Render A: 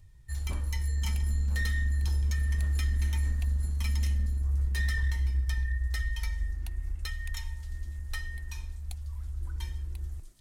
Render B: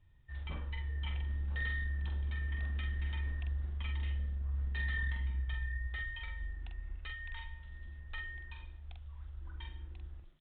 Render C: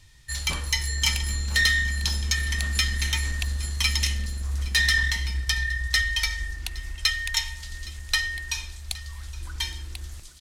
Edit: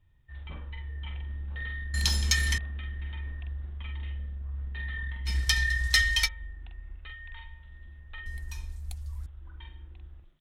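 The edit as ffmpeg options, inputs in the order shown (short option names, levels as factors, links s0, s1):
-filter_complex "[2:a]asplit=2[s0][s1];[1:a]asplit=4[s2][s3][s4][s5];[s2]atrim=end=1.942[s6];[s0]atrim=start=1.938:end=2.582[s7];[s3]atrim=start=2.578:end=5.29[s8];[s1]atrim=start=5.25:end=6.29[s9];[s4]atrim=start=6.25:end=8.262[s10];[0:a]atrim=start=8.258:end=9.262[s11];[s5]atrim=start=9.258[s12];[s6][s7]acrossfade=d=0.004:c1=hsin:c2=hsin[s13];[s13][s8]acrossfade=d=0.004:c1=hsin:c2=hsin[s14];[s14][s9]acrossfade=d=0.04:c1=tri:c2=tri[s15];[s15][s10]acrossfade=d=0.04:c1=tri:c2=tri[s16];[s16][s11]acrossfade=d=0.004:c1=hsin:c2=hsin[s17];[s17][s12]acrossfade=d=0.004:c1=hsin:c2=hsin"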